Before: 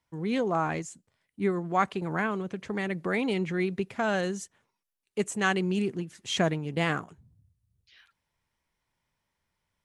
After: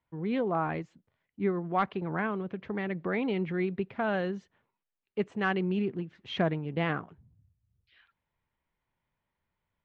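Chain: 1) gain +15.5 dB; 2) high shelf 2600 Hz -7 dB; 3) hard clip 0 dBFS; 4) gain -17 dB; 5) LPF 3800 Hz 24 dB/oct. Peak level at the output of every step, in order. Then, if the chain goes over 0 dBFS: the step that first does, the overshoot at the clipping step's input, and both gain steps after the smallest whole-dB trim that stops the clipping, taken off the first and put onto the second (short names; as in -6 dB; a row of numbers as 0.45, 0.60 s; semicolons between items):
+4.5, +3.5, 0.0, -17.0, -16.5 dBFS; step 1, 3.5 dB; step 1 +11.5 dB, step 4 -13 dB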